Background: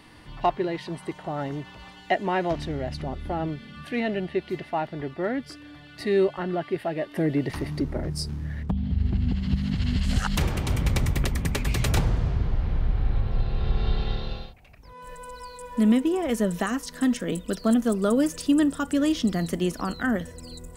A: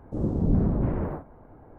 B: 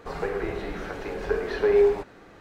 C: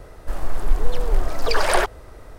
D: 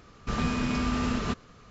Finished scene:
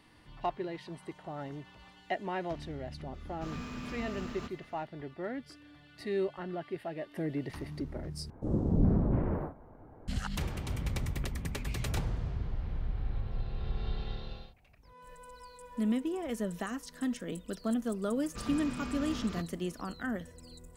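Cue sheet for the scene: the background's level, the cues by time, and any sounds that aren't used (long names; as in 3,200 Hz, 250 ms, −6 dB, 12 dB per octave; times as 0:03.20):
background −10.5 dB
0:03.14: mix in D −14 dB + mu-law and A-law mismatch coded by mu
0:08.30: overwrite with A −3.5 dB
0:18.08: mix in D −11.5 dB
not used: B, C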